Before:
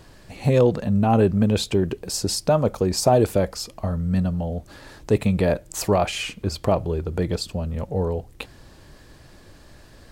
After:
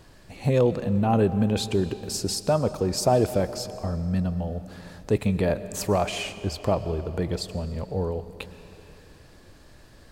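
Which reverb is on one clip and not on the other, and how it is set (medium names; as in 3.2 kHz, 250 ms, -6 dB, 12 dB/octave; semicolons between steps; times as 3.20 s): algorithmic reverb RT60 3.1 s, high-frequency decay 0.8×, pre-delay 80 ms, DRR 13 dB; trim -3.5 dB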